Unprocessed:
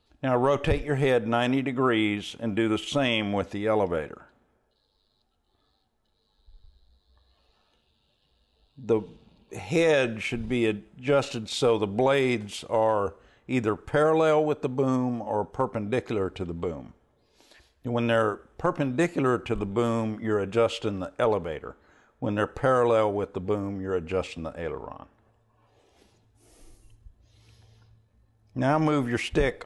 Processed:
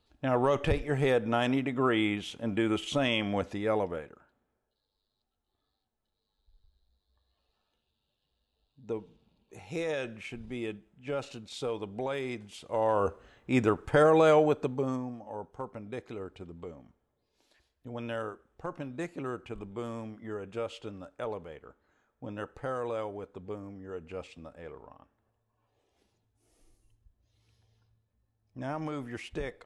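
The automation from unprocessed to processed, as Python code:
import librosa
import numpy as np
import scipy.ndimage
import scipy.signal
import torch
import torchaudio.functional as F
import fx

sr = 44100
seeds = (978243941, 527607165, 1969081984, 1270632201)

y = fx.gain(x, sr, db=fx.line((3.68, -3.5), (4.1, -11.5), (12.52, -11.5), (13.06, 0.0), (14.49, 0.0), (15.17, -12.5)))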